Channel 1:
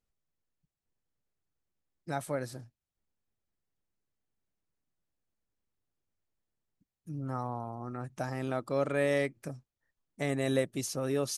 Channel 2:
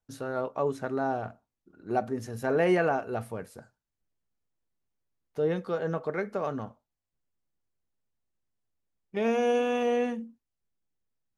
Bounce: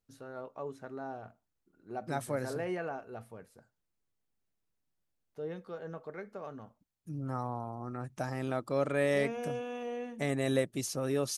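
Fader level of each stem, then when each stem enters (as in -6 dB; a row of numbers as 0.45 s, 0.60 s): -0.5 dB, -12.0 dB; 0.00 s, 0.00 s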